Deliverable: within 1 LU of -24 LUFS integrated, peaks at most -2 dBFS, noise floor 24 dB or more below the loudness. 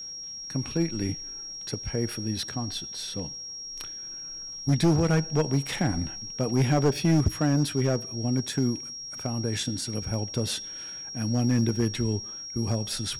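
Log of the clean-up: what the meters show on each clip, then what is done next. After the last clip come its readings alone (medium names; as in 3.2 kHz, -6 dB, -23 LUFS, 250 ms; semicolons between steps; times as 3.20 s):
clipped samples 1.1%; clipping level -16.5 dBFS; steady tone 5.6 kHz; tone level -36 dBFS; loudness -28.0 LUFS; peak level -16.5 dBFS; loudness target -24.0 LUFS
-> clip repair -16.5 dBFS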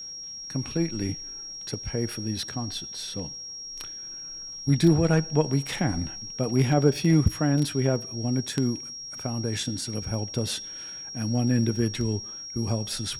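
clipped samples 0.0%; steady tone 5.6 kHz; tone level -36 dBFS
-> band-stop 5.6 kHz, Q 30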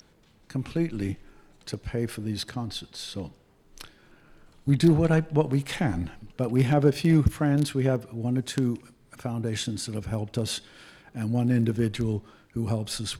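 steady tone not found; loudness -27.0 LUFS; peak level -7.5 dBFS; loudness target -24.0 LUFS
-> trim +3 dB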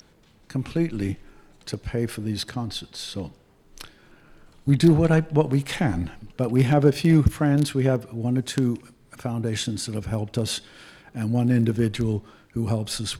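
loudness -24.0 LUFS; peak level -4.5 dBFS; noise floor -57 dBFS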